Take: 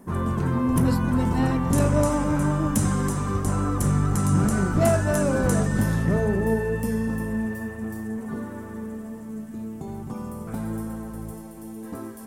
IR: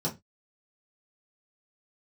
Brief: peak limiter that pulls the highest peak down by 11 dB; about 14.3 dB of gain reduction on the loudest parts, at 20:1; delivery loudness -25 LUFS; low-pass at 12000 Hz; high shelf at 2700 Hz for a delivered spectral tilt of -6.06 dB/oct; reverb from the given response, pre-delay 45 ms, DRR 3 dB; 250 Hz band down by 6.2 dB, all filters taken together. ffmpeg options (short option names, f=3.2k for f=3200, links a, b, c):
-filter_complex "[0:a]lowpass=12k,equalizer=f=250:t=o:g=-8.5,highshelf=f=2.7k:g=7.5,acompressor=threshold=-32dB:ratio=20,alimiter=level_in=6dB:limit=-24dB:level=0:latency=1,volume=-6dB,asplit=2[a][b];[1:a]atrim=start_sample=2205,adelay=45[c];[b][c]afir=irnorm=-1:irlink=0,volume=-9dB[d];[a][d]amix=inputs=2:normalize=0,volume=8dB"